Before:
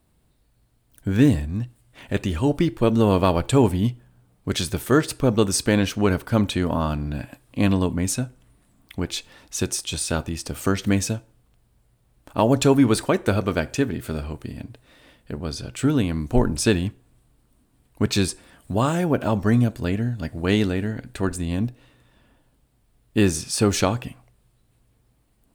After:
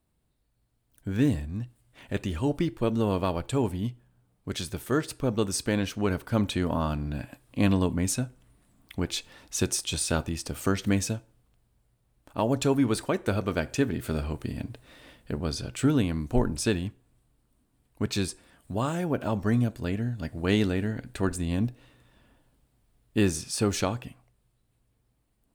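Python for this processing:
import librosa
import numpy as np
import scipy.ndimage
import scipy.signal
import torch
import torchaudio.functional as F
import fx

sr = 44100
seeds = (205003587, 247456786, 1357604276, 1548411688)

y = fx.rider(x, sr, range_db=10, speed_s=2.0)
y = F.gain(torch.from_numpy(y), -6.0).numpy()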